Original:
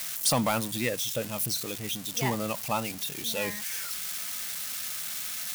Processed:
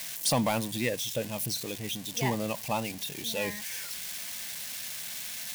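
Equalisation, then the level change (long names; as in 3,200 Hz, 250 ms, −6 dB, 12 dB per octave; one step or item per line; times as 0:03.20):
parametric band 1,300 Hz −12 dB 0.24 octaves
high-shelf EQ 5,900 Hz −4.5 dB
0.0 dB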